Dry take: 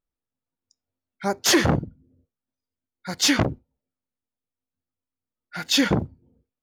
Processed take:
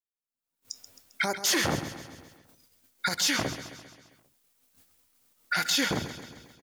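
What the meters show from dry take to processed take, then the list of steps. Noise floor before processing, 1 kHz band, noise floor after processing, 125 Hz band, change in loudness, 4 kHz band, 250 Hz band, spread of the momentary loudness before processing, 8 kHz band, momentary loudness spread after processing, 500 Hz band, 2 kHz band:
under -85 dBFS, -3.5 dB, under -85 dBFS, -10.5 dB, -6.0 dB, -4.0 dB, -10.0 dB, 18 LU, -3.5 dB, 19 LU, -7.5 dB, -1.5 dB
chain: recorder AGC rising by 46 dB/s; gate -57 dBFS, range -21 dB; tilt EQ +2.5 dB/octave; peak limiter -14 dBFS, peak gain reduction 11 dB; feedback delay 133 ms, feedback 56%, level -12 dB; trim -2.5 dB

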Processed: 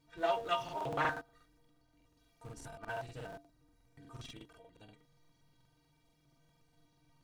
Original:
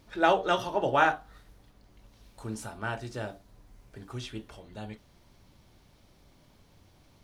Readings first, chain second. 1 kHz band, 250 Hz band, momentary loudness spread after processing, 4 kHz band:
-9.5 dB, -13.0 dB, 20 LU, -8.0 dB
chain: inharmonic resonator 140 Hz, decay 0.27 s, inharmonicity 0.03; in parallel at -11 dB: Schmitt trigger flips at -45.5 dBFS; on the sum: crackling interface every 0.12 s, samples 2048, repeat, from 0.64 s; loudspeaker Doppler distortion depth 0.26 ms

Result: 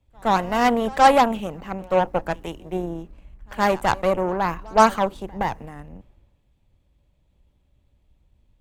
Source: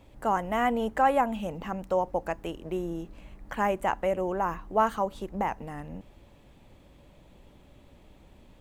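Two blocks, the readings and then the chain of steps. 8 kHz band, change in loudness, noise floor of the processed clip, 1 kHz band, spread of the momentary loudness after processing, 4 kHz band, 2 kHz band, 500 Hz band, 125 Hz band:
+12.5 dB, +7.5 dB, -65 dBFS, +7.5 dB, 16 LU, +12.5 dB, +8.0 dB, +6.5 dB, +7.0 dB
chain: Chebyshev shaper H 8 -20 dB, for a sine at -11.5 dBFS; reverse echo 118 ms -19 dB; three bands expanded up and down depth 70%; trim +5 dB

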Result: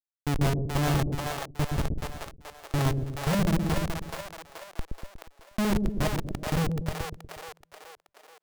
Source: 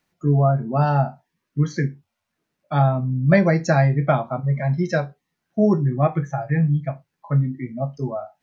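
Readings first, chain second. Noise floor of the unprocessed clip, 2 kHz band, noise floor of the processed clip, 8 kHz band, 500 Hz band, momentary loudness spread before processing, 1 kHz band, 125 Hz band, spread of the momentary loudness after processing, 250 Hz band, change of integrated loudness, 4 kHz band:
-79 dBFS, -7.0 dB, -75 dBFS, no reading, -11.5 dB, 11 LU, -9.5 dB, -10.0 dB, 18 LU, -8.0 dB, -8.0 dB, +6.5 dB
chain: fade out at the end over 1.45 s; time-frequency box 3.35–5.49 s, 390–4900 Hz -28 dB; spectral noise reduction 6 dB; hum notches 60/120/180/240/300/360 Hz; Schmitt trigger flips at -18 dBFS; two-band feedback delay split 480 Hz, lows 120 ms, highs 428 ms, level -3 dB

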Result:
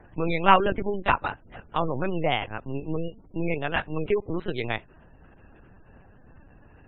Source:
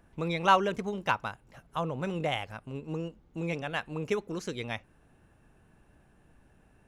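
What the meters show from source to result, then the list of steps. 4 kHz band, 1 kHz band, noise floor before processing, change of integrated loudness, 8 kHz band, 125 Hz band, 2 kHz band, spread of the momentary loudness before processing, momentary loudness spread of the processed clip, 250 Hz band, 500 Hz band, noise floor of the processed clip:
+3.5 dB, +5.5 dB, -63 dBFS, +5.0 dB, under -30 dB, +4.0 dB, +5.0 dB, 15 LU, 14 LU, +5.0 dB, +5.5 dB, -54 dBFS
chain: tracing distortion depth 0.057 ms; in parallel at -2 dB: compression, threshold -38 dBFS, peak gain reduction 20 dB; on the sum: LPC vocoder at 8 kHz pitch kept; spectral gate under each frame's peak -30 dB strong; trim +4.5 dB

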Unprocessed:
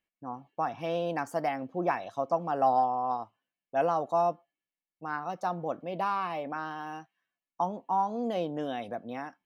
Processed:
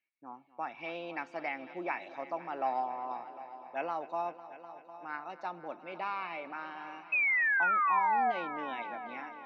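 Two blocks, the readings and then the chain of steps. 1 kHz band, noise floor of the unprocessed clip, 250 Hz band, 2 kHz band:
-3.5 dB, under -85 dBFS, -9.5 dB, +10.0 dB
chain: cabinet simulation 440–4100 Hz, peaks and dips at 490 Hz -10 dB, 710 Hz -9 dB, 1.1 kHz -8 dB, 1.6 kHz -4 dB, 2.3 kHz +8 dB, 3.2 kHz -8 dB; painted sound fall, 7.12–8.32 s, 700–2600 Hz -28 dBFS; multi-head delay 251 ms, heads all three, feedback 50%, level -18 dB

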